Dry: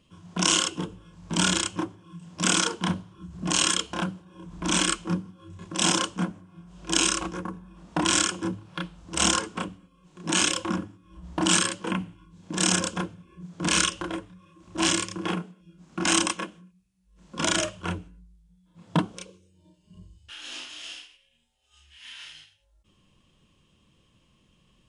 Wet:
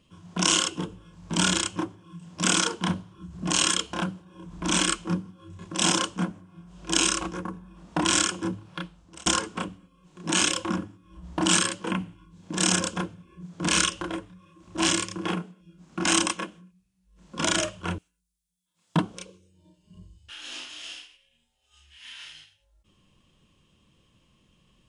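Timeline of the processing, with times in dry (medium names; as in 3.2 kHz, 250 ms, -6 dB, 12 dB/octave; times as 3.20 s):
8.68–9.26 s: fade out
17.98–18.96 s: pre-emphasis filter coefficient 0.97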